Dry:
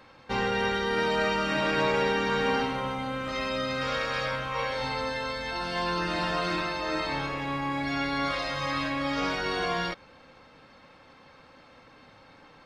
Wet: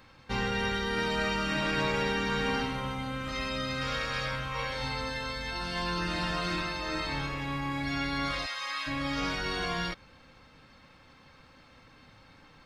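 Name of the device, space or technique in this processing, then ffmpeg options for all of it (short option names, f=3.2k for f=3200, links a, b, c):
smiley-face EQ: -filter_complex "[0:a]lowshelf=f=120:g=8,equalizer=f=580:t=o:w=1.9:g=-5.5,highshelf=f=8.1k:g=6,asplit=3[a][b][c];[a]afade=t=out:st=8.45:d=0.02[d];[b]highpass=970,afade=t=in:st=8.45:d=0.02,afade=t=out:st=8.86:d=0.02[e];[c]afade=t=in:st=8.86:d=0.02[f];[d][e][f]amix=inputs=3:normalize=0,volume=-1.5dB"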